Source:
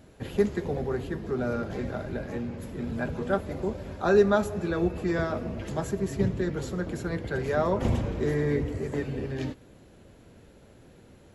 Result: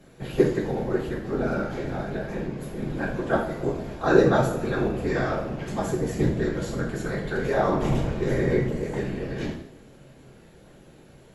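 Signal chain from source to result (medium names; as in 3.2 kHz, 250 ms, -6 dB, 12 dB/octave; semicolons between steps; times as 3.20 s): whisper effect; two-slope reverb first 0.53 s, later 1.7 s, DRR -1 dB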